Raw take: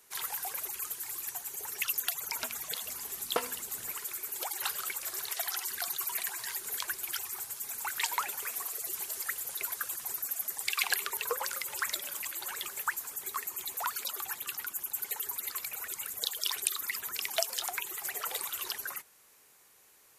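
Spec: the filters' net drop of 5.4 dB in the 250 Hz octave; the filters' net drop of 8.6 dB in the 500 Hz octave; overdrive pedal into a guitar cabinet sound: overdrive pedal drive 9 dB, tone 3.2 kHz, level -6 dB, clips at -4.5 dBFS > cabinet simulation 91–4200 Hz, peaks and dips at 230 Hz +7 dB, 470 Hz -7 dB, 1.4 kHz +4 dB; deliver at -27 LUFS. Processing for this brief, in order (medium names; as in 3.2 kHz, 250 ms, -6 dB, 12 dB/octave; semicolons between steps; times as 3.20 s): peaking EQ 250 Hz -7 dB; peaking EQ 500 Hz -7.5 dB; overdrive pedal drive 9 dB, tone 3.2 kHz, level -6 dB, clips at -4.5 dBFS; cabinet simulation 91–4200 Hz, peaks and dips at 230 Hz +7 dB, 470 Hz -7 dB, 1.4 kHz +4 dB; trim +9.5 dB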